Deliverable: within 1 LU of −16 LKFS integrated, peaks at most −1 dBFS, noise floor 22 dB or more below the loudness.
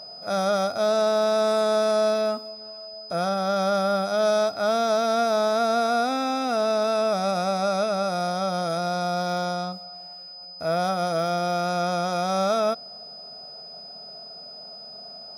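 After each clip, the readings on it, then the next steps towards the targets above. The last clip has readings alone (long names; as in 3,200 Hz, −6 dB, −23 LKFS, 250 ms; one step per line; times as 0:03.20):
interfering tone 5,000 Hz; level of the tone −39 dBFS; integrated loudness −24.0 LKFS; sample peak −13.5 dBFS; target loudness −16.0 LKFS
→ notch filter 5,000 Hz, Q 30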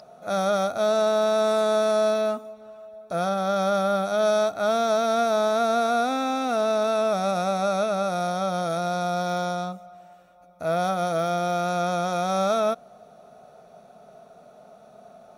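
interfering tone none found; integrated loudness −24.0 LKFS; sample peak −14.0 dBFS; target loudness −16.0 LKFS
→ level +8 dB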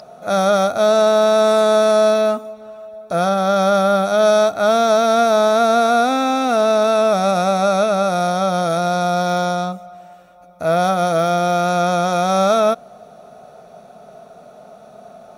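integrated loudness −16.0 LKFS; sample peak −6.0 dBFS; background noise floor −44 dBFS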